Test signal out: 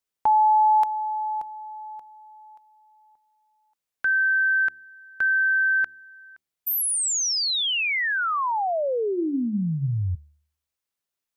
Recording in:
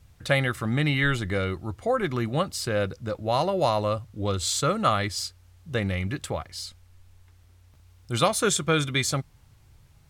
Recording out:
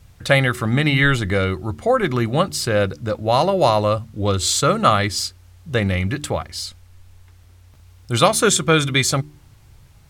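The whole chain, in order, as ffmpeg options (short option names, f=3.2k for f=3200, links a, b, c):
-af "bandreject=f=74.12:t=h:w=4,bandreject=f=148.24:t=h:w=4,bandreject=f=222.36:t=h:w=4,bandreject=f=296.48:t=h:w=4,bandreject=f=370.6:t=h:w=4,volume=7.5dB"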